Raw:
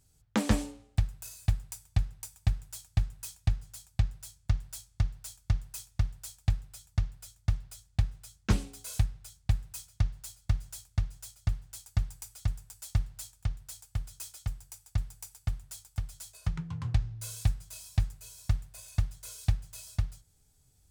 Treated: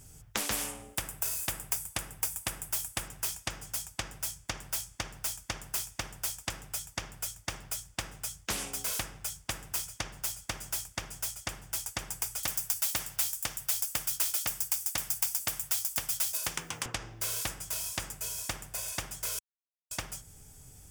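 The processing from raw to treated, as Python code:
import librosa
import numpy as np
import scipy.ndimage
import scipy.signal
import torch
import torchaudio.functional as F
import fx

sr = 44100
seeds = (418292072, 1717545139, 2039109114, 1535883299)

y = fx.high_shelf_res(x, sr, hz=7600.0, db=6.5, q=1.5, at=(0.52, 3.08))
y = fx.riaa(y, sr, side='recording', at=(12.43, 16.86))
y = fx.edit(y, sr, fx.silence(start_s=19.39, length_s=0.52), tone=tone)
y = fx.peak_eq(y, sr, hz=4100.0, db=-13.5, octaves=0.28)
y = fx.spectral_comp(y, sr, ratio=4.0)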